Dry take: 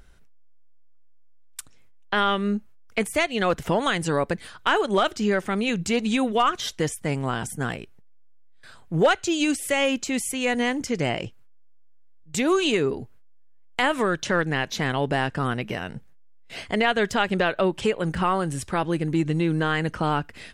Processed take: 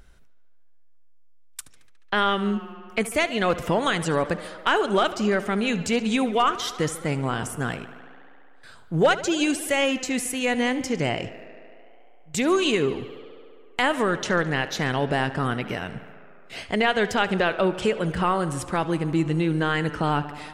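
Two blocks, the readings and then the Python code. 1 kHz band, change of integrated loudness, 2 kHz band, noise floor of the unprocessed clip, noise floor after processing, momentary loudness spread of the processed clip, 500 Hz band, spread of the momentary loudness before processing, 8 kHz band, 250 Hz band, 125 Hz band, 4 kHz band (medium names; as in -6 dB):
+0.5 dB, 0.0 dB, +0.5 dB, -48 dBFS, -48 dBFS, 10 LU, +0.5 dB, 10 LU, 0.0 dB, 0.0 dB, 0.0 dB, 0.0 dB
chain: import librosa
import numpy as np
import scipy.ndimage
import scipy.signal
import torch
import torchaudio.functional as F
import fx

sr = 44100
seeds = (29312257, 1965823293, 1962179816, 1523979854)

y = fx.echo_tape(x, sr, ms=71, feedback_pct=87, wet_db=-15, lp_hz=5800.0, drive_db=10.0, wow_cents=40)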